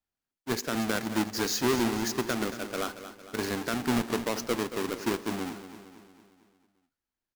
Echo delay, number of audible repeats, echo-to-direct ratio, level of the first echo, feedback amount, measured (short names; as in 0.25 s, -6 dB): 0.227 s, 5, -10.5 dB, -12.0 dB, 53%